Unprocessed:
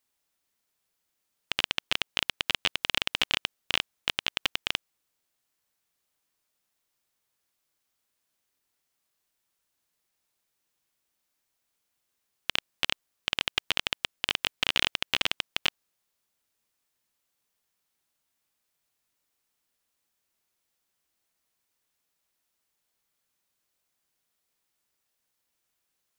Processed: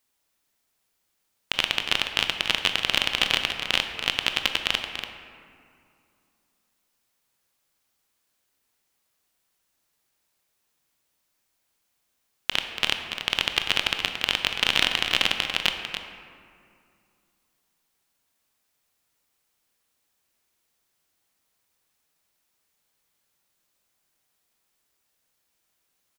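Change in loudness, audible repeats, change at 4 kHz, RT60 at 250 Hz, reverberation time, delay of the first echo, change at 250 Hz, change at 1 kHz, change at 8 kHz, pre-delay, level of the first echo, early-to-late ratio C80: +5.0 dB, 1, +5.0 dB, 2.9 s, 2.4 s, 0.286 s, +5.5 dB, +5.5 dB, +5.0 dB, 21 ms, -9.0 dB, 5.5 dB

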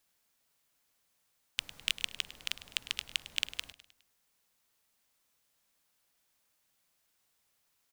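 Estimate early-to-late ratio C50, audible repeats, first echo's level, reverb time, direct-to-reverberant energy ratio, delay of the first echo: none, 4, -15.5 dB, none, none, 0.103 s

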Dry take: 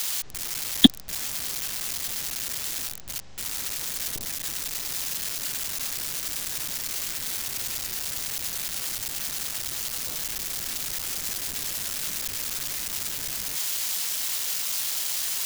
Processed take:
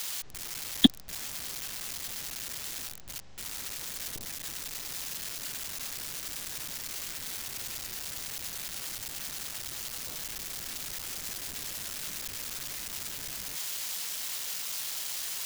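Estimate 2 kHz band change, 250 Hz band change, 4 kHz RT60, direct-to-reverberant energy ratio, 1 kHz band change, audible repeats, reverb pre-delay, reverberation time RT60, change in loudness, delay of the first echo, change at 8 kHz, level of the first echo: -5.5 dB, -5.0 dB, none, none, -5.0 dB, none, none, none, -7.0 dB, none, -7.5 dB, none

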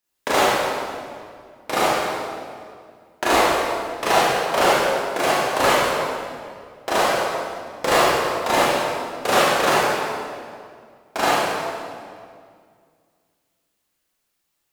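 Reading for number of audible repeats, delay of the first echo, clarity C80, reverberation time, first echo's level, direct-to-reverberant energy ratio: none, none, -1.5 dB, 2.1 s, none, -9.5 dB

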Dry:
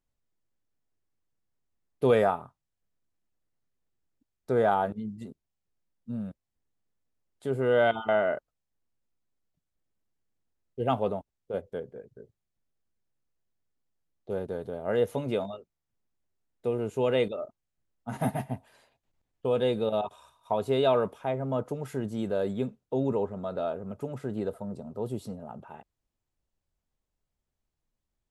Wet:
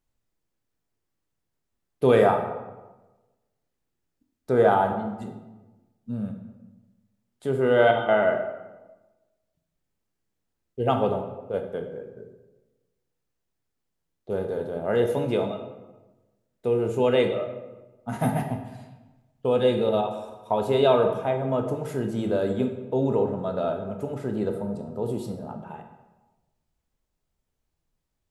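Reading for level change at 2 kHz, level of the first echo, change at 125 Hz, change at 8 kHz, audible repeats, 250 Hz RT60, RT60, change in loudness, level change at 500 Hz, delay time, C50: +4.5 dB, none, +5.0 dB, n/a, none, 1.3 s, 1.1 s, +5.0 dB, +5.0 dB, none, 7.0 dB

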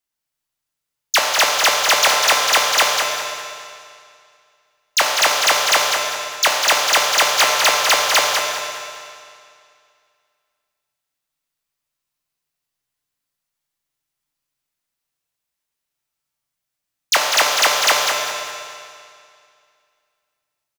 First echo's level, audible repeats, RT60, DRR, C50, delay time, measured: -6.5 dB, 2, 2.3 s, -2.5 dB, -1.0 dB, 0.199 s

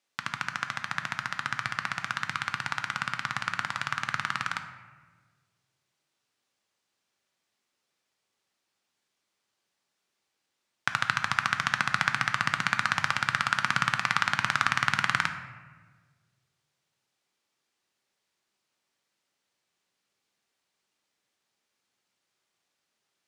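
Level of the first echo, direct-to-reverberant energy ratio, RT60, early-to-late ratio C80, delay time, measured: none, 6.5 dB, 1.5 s, 11.0 dB, none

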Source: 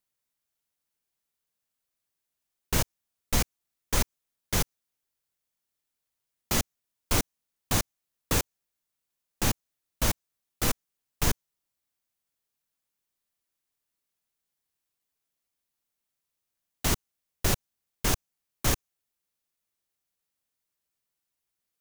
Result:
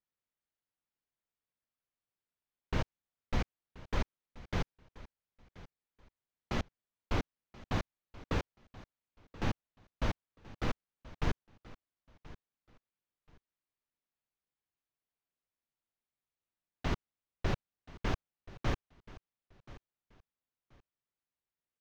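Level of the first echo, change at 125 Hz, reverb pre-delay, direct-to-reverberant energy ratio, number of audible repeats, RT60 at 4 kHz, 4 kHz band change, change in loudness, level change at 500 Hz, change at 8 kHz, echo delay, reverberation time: -19.0 dB, -5.0 dB, none, none, 2, none, -13.0 dB, -9.5 dB, -5.5 dB, -26.0 dB, 1.03 s, none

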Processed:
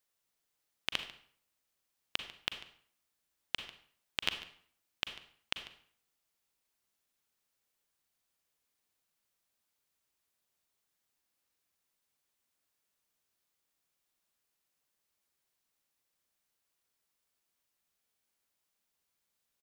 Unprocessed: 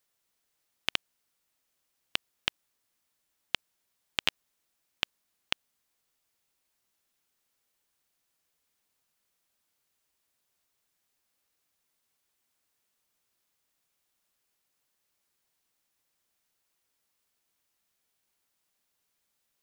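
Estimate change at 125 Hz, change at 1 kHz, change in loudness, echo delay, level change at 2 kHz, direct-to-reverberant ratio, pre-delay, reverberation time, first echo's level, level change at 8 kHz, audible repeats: -4.0 dB, -4.5 dB, -4.5 dB, 0.145 s, -4.5 dB, 7.5 dB, 36 ms, 0.55 s, -18.0 dB, -4.5 dB, 1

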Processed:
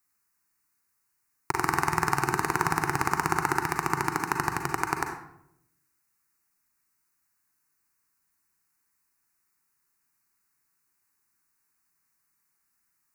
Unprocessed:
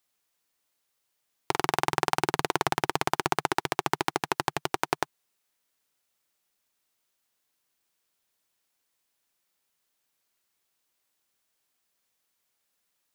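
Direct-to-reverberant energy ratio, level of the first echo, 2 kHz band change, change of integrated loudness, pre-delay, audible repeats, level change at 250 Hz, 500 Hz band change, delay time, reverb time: 4.0 dB, none, +3.0 dB, +1.0 dB, 36 ms, none, +2.0 dB, -3.0 dB, none, 0.80 s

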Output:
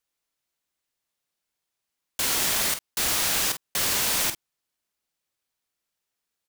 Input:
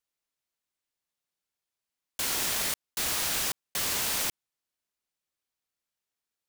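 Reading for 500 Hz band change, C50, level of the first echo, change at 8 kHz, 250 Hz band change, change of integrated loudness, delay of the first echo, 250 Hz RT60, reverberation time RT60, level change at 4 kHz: +5.0 dB, none, -11.0 dB, +5.0 dB, +5.0 dB, +5.0 dB, 44 ms, none, none, +5.0 dB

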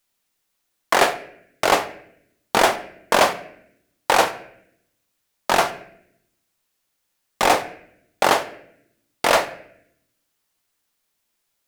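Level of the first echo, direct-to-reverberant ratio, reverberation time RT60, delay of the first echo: none, 9.0 dB, 0.70 s, none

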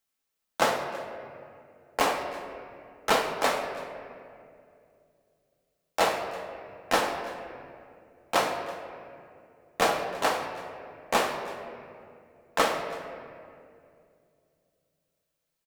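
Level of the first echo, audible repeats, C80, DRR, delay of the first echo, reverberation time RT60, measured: -19.5 dB, 1, 7.0 dB, 2.5 dB, 0.329 s, 2.5 s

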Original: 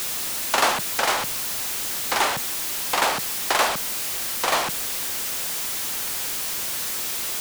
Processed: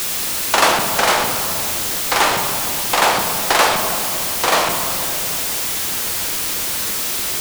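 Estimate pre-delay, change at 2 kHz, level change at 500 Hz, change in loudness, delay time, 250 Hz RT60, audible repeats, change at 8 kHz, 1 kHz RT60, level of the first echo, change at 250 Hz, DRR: 6 ms, +6.5 dB, +8.0 dB, +6.5 dB, none, 3.1 s, none, +6.0 dB, 2.5 s, none, +9.5 dB, 4.0 dB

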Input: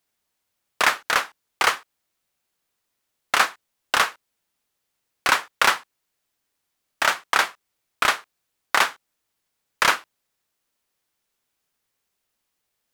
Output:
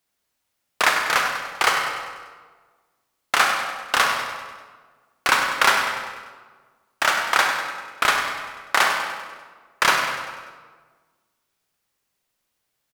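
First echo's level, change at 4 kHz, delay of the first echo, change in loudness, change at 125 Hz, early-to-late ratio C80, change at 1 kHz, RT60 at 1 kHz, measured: -9.5 dB, +2.0 dB, 98 ms, +1.0 dB, +3.5 dB, 4.0 dB, +2.5 dB, 1.4 s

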